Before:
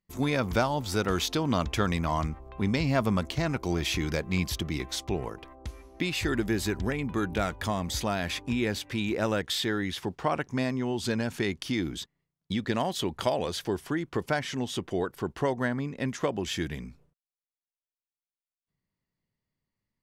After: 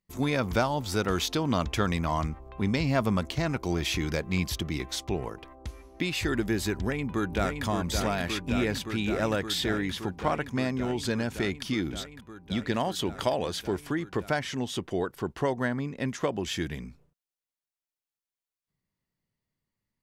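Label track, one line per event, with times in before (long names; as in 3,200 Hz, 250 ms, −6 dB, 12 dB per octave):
6.760000	7.640000	delay throw 570 ms, feedback 85%, level −5.5 dB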